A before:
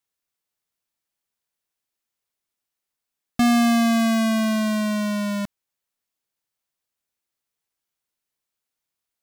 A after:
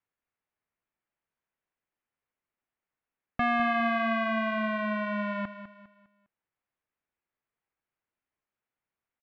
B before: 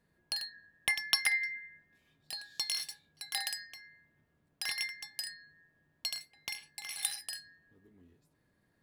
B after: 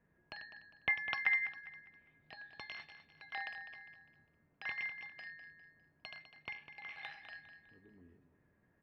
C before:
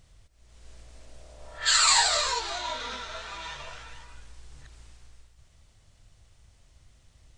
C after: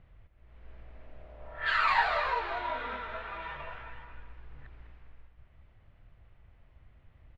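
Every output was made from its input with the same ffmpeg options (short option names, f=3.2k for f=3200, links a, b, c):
-filter_complex "[0:a]lowpass=f=2.4k:w=0.5412,lowpass=f=2.4k:w=1.3066,acrossover=split=650[a][b];[a]acompressor=threshold=-35dB:ratio=6[c];[c][b]amix=inputs=2:normalize=0,aecho=1:1:202|404|606|808:0.266|0.0958|0.0345|0.0124"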